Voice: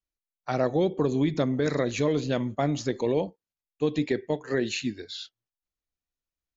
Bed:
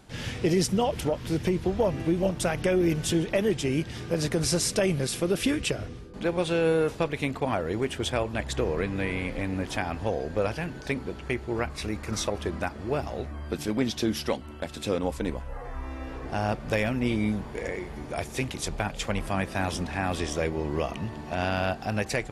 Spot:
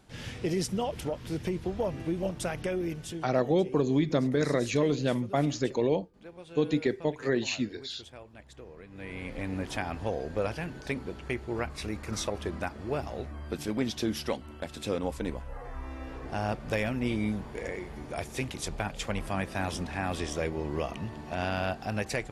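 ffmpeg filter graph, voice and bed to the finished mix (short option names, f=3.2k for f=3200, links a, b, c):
-filter_complex "[0:a]adelay=2750,volume=-1dB[a];[1:a]volume=11dB,afade=t=out:st=2.55:d=0.86:silence=0.188365,afade=t=in:st=8.88:d=0.64:silence=0.141254[b];[a][b]amix=inputs=2:normalize=0"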